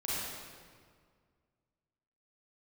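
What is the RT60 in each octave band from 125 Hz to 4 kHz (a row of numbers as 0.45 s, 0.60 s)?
2.3 s, 2.2 s, 2.0 s, 1.8 s, 1.6 s, 1.3 s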